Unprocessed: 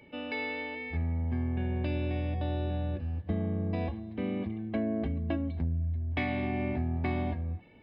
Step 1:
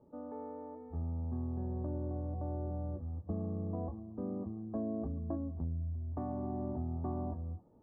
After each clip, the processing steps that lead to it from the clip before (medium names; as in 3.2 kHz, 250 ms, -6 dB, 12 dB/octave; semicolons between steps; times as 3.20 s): elliptic low-pass 1.2 kHz, stop band 50 dB; trim -5.5 dB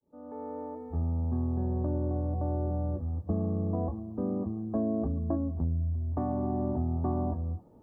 fade-in on the opening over 0.59 s; trim +7.5 dB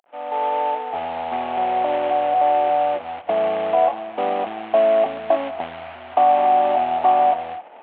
CVSD coder 16 kbps; resonant high-pass 730 Hz, resonance Q 4.9; in parallel at 0 dB: peak limiter -27.5 dBFS, peak gain reduction 11 dB; on the sum: trim +8.5 dB